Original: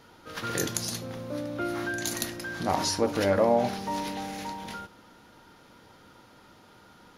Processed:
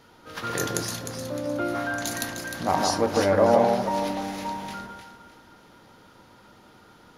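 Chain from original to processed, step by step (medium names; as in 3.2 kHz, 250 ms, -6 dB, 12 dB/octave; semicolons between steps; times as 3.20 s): dynamic bell 910 Hz, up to +4 dB, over -40 dBFS, Q 0.79; on a send: echo whose repeats swap between lows and highs 153 ms, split 1.5 kHz, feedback 56%, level -2.5 dB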